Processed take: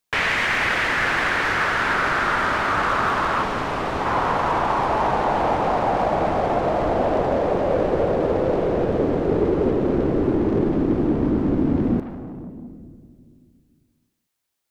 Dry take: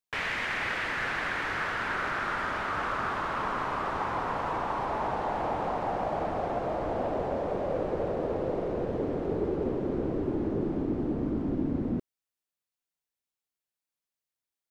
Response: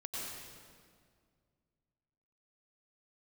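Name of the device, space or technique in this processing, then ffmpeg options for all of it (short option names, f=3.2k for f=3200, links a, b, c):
saturated reverb return: -filter_complex "[0:a]asettb=1/sr,asplit=3[a][b][c];[a]atrim=end=3.434[d];[b]atrim=start=3.43:end=4.06,asetpts=PTS-STARTPTS,afade=t=in:d=0.004:c=qsin,afade=t=out:st=0.626:d=0.004:c=qsin,equalizer=f=1.2k:t=o:w=1.2:g=-7.5[e];[c]atrim=start=4.056[f];[d][e]acrossfade=d=0.004:c1=hsin:c2=qsin[g];[g][f]acrossfade=d=0.004:c1=qsin:c2=hsin,asplit=2[h][i];[1:a]atrim=start_sample=2205[j];[i][j]afir=irnorm=-1:irlink=0,asoftclip=type=tanh:threshold=-35.5dB,volume=-4dB[k];[h][k]amix=inputs=2:normalize=0,volume=9dB"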